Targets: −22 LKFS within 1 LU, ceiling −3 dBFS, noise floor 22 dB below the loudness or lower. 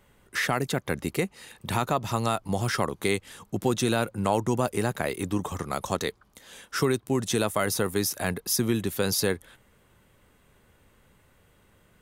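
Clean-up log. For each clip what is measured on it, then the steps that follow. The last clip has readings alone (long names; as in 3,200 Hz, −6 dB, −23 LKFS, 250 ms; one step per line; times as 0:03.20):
number of dropouts 3; longest dropout 1.8 ms; integrated loudness −28.0 LKFS; sample peak −11.5 dBFS; target loudness −22.0 LKFS
→ repair the gap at 0:00.48/0:04.92/0:07.28, 1.8 ms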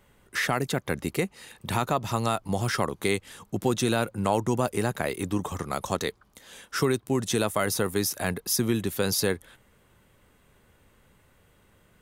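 number of dropouts 0; integrated loudness −28.0 LKFS; sample peak −11.5 dBFS; target loudness −22.0 LKFS
→ level +6 dB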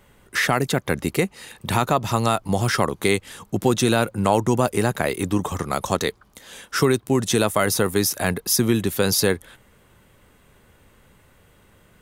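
integrated loudness −22.0 LKFS; sample peak −5.5 dBFS; background noise floor −56 dBFS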